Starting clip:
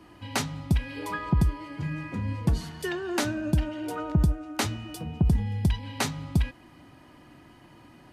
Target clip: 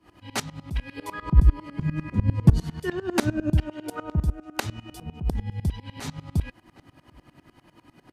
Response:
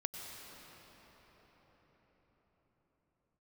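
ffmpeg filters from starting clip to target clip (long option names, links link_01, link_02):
-filter_complex "[0:a]asettb=1/sr,asplit=3[link_01][link_02][link_03];[link_01]atrim=end=1.224[link_04];[link_02]atrim=start=1.22:end=3.57,asetpts=PTS-STARTPTS,afade=type=in:duration=0.004:curve=qsin,afade=type=out:start_time=2.346:duration=0.004:curve=qsin,lowshelf=frequency=360:gain=10[link_05];[link_03]atrim=start=3.566[link_06];[link_04][link_05]acrossfade=duration=0.004:curve1=hsin:curve2=qsin[link_07];[link_07][link_06]acrossfade=duration=0.004:curve1=qsin:curve2=hsin,asplit=2[link_08][link_09];[link_09]adelay=758,volume=-27dB,highshelf=frequency=4000:gain=-17.1[link_10];[link_08][link_10]amix=inputs=2:normalize=0,aeval=exprs='val(0)*pow(10,-21*if(lt(mod(-10*n/s,1),2*abs(-10)/1000),1-mod(-10*n/s,1)/(2*abs(-10)/1000),(mod(-10*n/s,1)-2*abs(-10)/1000)/(1-2*abs(-10)/1000))/20)':channel_layout=same,volume=4.5dB"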